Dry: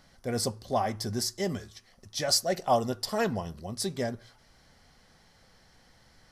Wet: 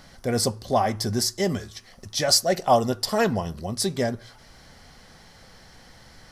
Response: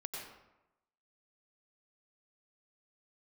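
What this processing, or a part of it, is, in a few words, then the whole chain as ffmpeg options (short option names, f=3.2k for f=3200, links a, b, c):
parallel compression: -filter_complex "[0:a]asplit=2[a][b];[b]acompressor=threshold=-45dB:ratio=6,volume=-2.5dB[c];[a][c]amix=inputs=2:normalize=0,volume=5.5dB"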